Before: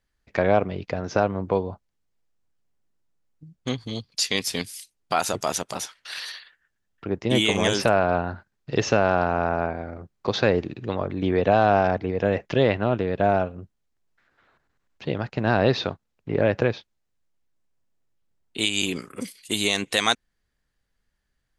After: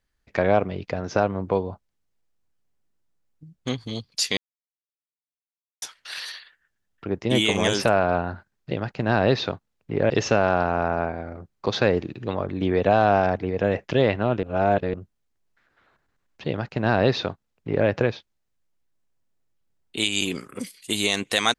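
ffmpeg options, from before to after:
-filter_complex "[0:a]asplit=7[a][b][c][d][e][f][g];[a]atrim=end=4.37,asetpts=PTS-STARTPTS,afade=t=out:st=4.366:d=0.004:c=hsin[h];[b]atrim=start=4.37:end=5.82,asetpts=PTS-STARTPTS,volume=0[i];[c]atrim=start=5.82:end=8.712,asetpts=PTS-STARTPTS,afade=t=in:d=0.004:c=hsin[j];[d]atrim=start=15.088:end=16.482[k];[e]atrim=start=8.708:end=13.042[l];[f]atrim=start=13.038:end=13.552,asetpts=PTS-STARTPTS,areverse[m];[g]atrim=start=13.548[n];[h][i][j]concat=n=3:v=0:a=1[o];[o][k]acrossfade=d=0.004:c1=hsin:c2=hsin[p];[p][l]acrossfade=d=0.004:c1=hsin:c2=hsin[q];[q][m]acrossfade=d=0.004:c1=hsin:c2=hsin[r];[r][n]acrossfade=d=0.004:c1=hsin:c2=hsin"

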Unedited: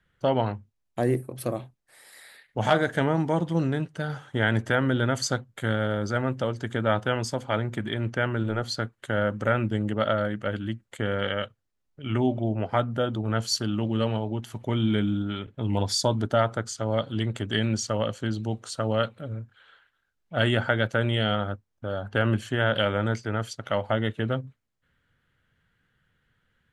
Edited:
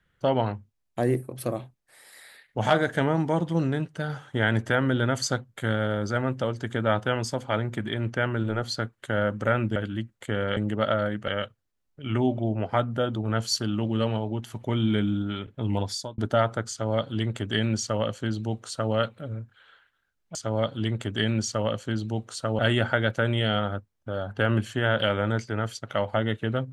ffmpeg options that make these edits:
-filter_complex "[0:a]asplit=7[a][b][c][d][e][f][g];[a]atrim=end=9.762[h];[b]atrim=start=10.468:end=11.282[i];[c]atrim=start=9.758:end=10.472[j];[d]atrim=start=11.278:end=16.18,asetpts=PTS-STARTPTS,afade=t=out:st=4.432:d=0.47[k];[e]atrim=start=16.18:end=20.352,asetpts=PTS-STARTPTS,afade=t=in:d=0.004:c=hsin[l];[f]atrim=start=16.698:end=18.942[m];[g]atrim=start=20.348[n];[h][i]acrossfade=d=0.004:c1=hsin:c2=hsin[o];[o][j]acrossfade=d=0.004:c1=hsin:c2=hsin[p];[k][l]concat=n=2:v=0:a=1[q];[p][q]acrossfade=d=0.004:c1=hsin:c2=hsin[r];[r][m]acrossfade=d=0.004:c1=hsin:c2=hsin[s];[s][n]acrossfade=d=0.004:c1=hsin:c2=hsin"

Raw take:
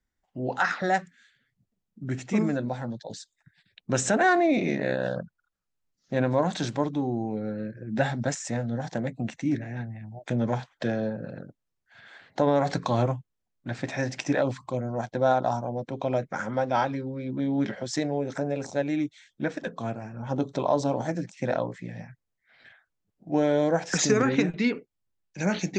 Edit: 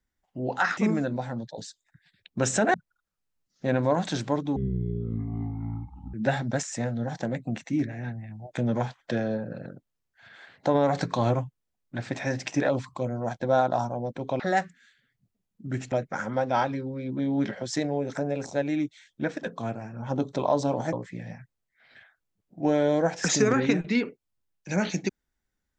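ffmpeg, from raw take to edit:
-filter_complex "[0:a]asplit=8[a][b][c][d][e][f][g][h];[a]atrim=end=0.772[i];[b]atrim=start=2.288:end=4.262[j];[c]atrim=start=5.218:end=7.044[k];[d]atrim=start=7.04:end=7.86,asetpts=PTS-STARTPTS,asetrate=22932,aresample=44100,atrim=end_sample=69542,asetpts=PTS-STARTPTS[l];[e]atrim=start=7.856:end=16.122[m];[f]atrim=start=0.768:end=2.292[n];[g]atrim=start=16.118:end=21.132[o];[h]atrim=start=21.618[p];[i][j]acrossfade=d=0.004:c1=hsin:c2=hsin[q];[q][k]acrossfade=d=0.004:c1=hsin:c2=hsin[r];[r][l]acrossfade=d=0.004:c1=hsin:c2=hsin[s];[s][m]acrossfade=d=0.004:c1=hsin:c2=hsin[t];[t][n]acrossfade=d=0.004:c1=hsin:c2=hsin[u];[u][o]acrossfade=d=0.004:c1=hsin:c2=hsin[v];[v][p]acrossfade=d=0.004:c1=hsin:c2=hsin"

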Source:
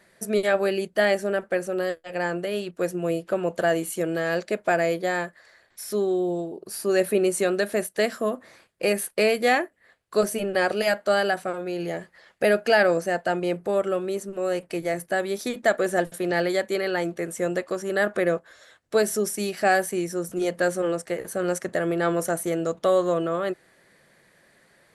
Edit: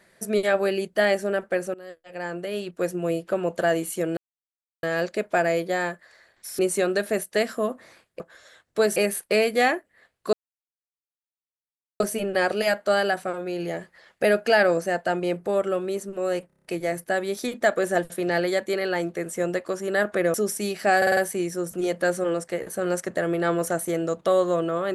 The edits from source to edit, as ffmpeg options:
-filter_complex "[0:a]asplit=18[a][b][c][d][e][f][g][h][i][j][k][l][m][n][o][p][q][r];[a]atrim=end=1.74,asetpts=PTS-STARTPTS,afade=t=out:st=1.736:d=0.004:c=hsin:silence=0.0841395[s];[b]atrim=start=1.74:end=4.17,asetpts=PTS-STARTPTS,afade=t=in:d=1.01:silence=0.0841395,afade=t=out:st=2.426:d=0.004:c=hsin,apad=pad_dur=0.66[t];[c]atrim=start=4.17:end=5.932,asetpts=PTS-STARTPTS,afade=t=in:d=0.004:c=hsin[u];[d]atrim=start=7.218:end=8.832[v];[e]atrim=start=18.358:end=19.122[w];[f]atrim=start=8.828:end=10.2,asetpts=PTS-STARTPTS,afade=t=out:st=1.368:d=0.004:c=hsin,apad=pad_dur=1.67[x];[g]atrim=start=10.2:end=14.702,asetpts=PTS-STARTPTS,afade=t=in:d=0.004:c=hsin[y];[h]atrim=start=14.668:end=14.702[z];[i]atrim=start=14.668:end=14.702[aa];[j]atrim=start=14.668:end=14.702[ab];[k]atrim=start=14.668:end=14.702[ac];[l]atrim=start=14.668:end=14.702[ad];[m]atrim=start=14.668:end=18.362[ae];[n]atrim=start=19.118:end=19.802[af];[o]atrim=start=19.748:end=19.802[ag];[p]atrim=start=19.748:end=19.802[ah];[q]atrim=start=19.748:end=19.802[ai];[r]atrim=start=19.748[aj];[s][t][u]concat=n=3:v=0:a=1[ak];[ak][v]acrossfade=d=0.004:c1=hsin:c2=hsin[al];[al][w]acrossfade=d=0.004:c1=hsin:c2=hsin[am];[x][y]concat=n=2:v=0:a=1[an];[am][an]acrossfade=d=0.004:c1=hsin:c2=hsin[ao];[ao][z]acrossfade=d=0.004:c1=hsin:c2=hsin[ap];[ap][aa]acrossfade=d=0.004:c1=hsin:c2=hsin[aq];[aq][ab]acrossfade=d=0.004:c1=hsin:c2=hsin[ar];[ar][ac]acrossfade=d=0.004:c1=hsin:c2=hsin[as];[as][ad]acrossfade=d=0.004:c1=hsin:c2=hsin[at];[at][ae]acrossfade=d=0.004:c1=hsin:c2=hsin[au];[au][af]acrossfade=d=0.004:c1=hsin:c2=hsin[av];[av][ag]acrossfade=d=0.004:c1=hsin:c2=hsin[aw];[aw][ah]acrossfade=d=0.004:c1=hsin:c2=hsin[ax];[ax][ai]acrossfade=d=0.004:c1=hsin:c2=hsin[ay];[ay][aj]acrossfade=d=0.004:c1=hsin:c2=hsin"

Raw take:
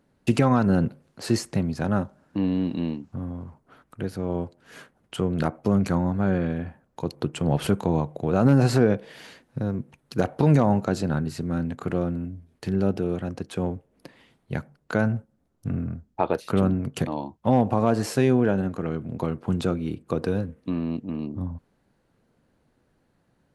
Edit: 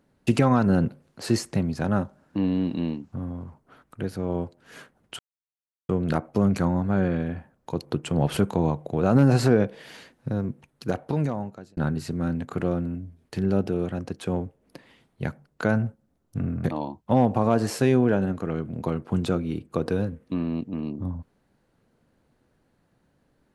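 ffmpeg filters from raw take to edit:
-filter_complex "[0:a]asplit=4[a][b][c][d];[a]atrim=end=5.19,asetpts=PTS-STARTPTS,afade=t=out:st=5.186:d=0.004:c=hsin,apad=pad_dur=0.7[e];[b]atrim=start=5.19:end=11.07,asetpts=PTS-STARTPTS,afade=t=in:d=0.004:c=hsin,afade=t=out:st=4.6:d=1.28[f];[c]atrim=start=11.07:end=15.942,asetpts=PTS-STARTPTS,afade=t=in:d=0.004:c=hsin[g];[d]atrim=start=16.998[h];[e][f][g]concat=n=3:v=0:a=1[i];[i][h]acrossfade=d=0.004:c1=hsin:c2=hsin"

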